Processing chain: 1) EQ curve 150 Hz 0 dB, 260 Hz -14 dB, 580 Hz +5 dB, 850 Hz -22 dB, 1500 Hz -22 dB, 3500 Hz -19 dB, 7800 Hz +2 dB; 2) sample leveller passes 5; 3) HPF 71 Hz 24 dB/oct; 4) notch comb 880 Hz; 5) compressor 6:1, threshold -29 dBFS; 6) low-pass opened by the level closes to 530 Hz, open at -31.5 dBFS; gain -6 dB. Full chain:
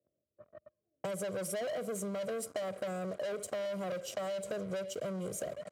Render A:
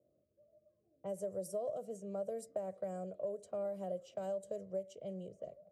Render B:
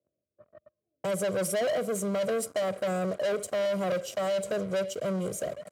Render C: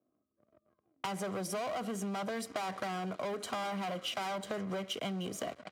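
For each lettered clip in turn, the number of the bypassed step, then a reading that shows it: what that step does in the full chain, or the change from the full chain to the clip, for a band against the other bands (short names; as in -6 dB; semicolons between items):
2, crest factor change +2.5 dB; 5, mean gain reduction 7.0 dB; 1, 500 Hz band -7.0 dB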